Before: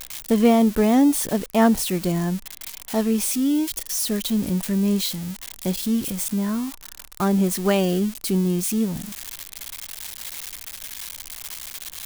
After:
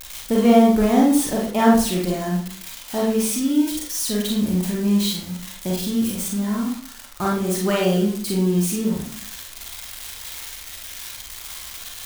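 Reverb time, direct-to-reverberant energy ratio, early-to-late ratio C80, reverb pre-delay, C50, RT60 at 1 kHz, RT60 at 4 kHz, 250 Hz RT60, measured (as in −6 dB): 0.55 s, −3.0 dB, 7.0 dB, 33 ms, 1.5 dB, 0.50 s, 0.45 s, 0.50 s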